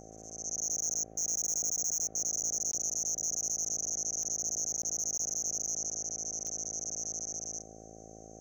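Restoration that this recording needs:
clipped peaks rebuilt −27 dBFS
click removal
hum removal 54.6 Hz, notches 14
repair the gap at 0:02.72/0:04.82/0:05.18, 13 ms

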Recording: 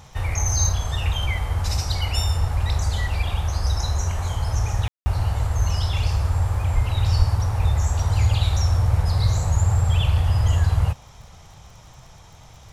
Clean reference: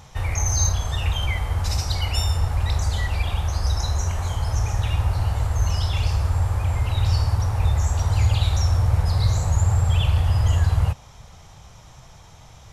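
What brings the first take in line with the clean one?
click removal
0:06.74–0:06.86: high-pass filter 140 Hz 24 dB per octave
0:07.18–0:07.30: high-pass filter 140 Hz 24 dB per octave
ambience match 0:04.88–0:05.06

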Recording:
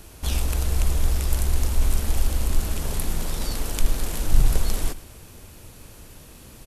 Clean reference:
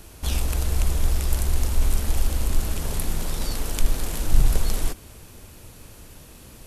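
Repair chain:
echo removal 108 ms −17.5 dB

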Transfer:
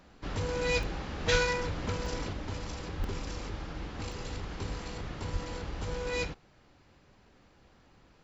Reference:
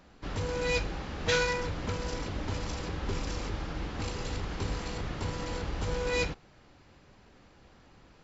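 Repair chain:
0:01.31–0:01.43: high-pass filter 140 Hz 24 dB per octave
0:02.98–0:03.10: high-pass filter 140 Hz 24 dB per octave
0:05.32–0:05.44: high-pass filter 140 Hz 24 dB per octave
repair the gap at 0:00.83/0:02.06/0:03.04/0:04.12, 1.6 ms
level 0 dB, from 0:02.33 +3.5 dB

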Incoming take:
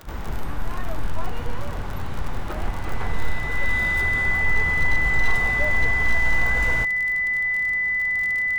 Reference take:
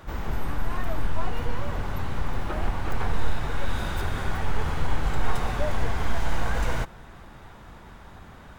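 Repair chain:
clipped peaks rebuilt −11 dBFS
click removal
notch filter 2,000 Hz, Q 30

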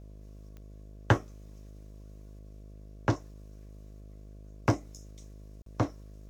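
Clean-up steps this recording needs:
click removal
hum removal 51.5 Hz, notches 13
repair the gap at 0:05.62, 43 ms

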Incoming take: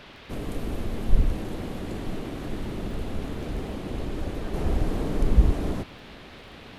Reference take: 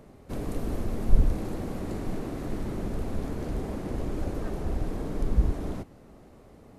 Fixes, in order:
click removal
noise reduction from a noise print 7 dB
level correction −5 dB, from 0:04.54

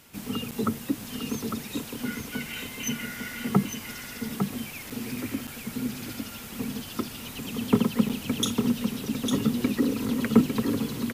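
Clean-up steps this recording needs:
repair the gap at 0:00.51/0:04.90/0:05.47/0:08.09, 6.5 ms
echo removal 853 ms −6 dB

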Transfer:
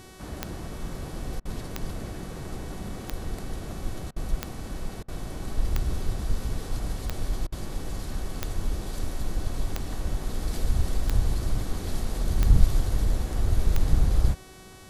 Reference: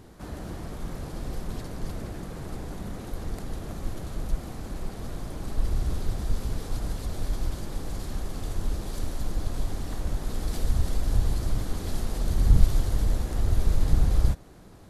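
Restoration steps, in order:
click removal
hum removal 375.5 Hz, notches 33
repair the gap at 0:01.40/0:04.11/0:05.03/0:07.47, 51 ms

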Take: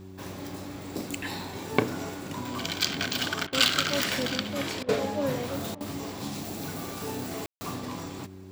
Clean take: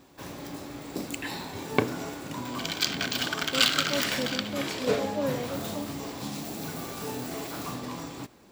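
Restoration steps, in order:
hum removal 94.7 Hz, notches 4
ambience match 0:07.46–0:07.61
repair the gap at 0:03.47/0:04.83/0:05.75, 55 ms

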